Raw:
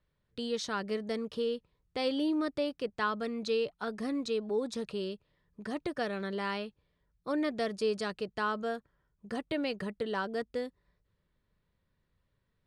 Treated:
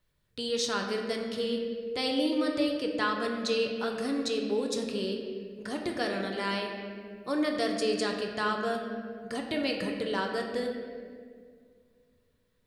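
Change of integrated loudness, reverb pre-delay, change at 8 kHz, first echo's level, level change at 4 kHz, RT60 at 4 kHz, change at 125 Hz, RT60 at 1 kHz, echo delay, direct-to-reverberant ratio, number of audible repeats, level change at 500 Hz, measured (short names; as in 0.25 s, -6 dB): +3.5 dB, 3 ms, +9.0 dB, none, +7.0 dB, 1.3 s, +3.0 dB, 1.7 s, none, 1.5 dB, none, +3.0 dB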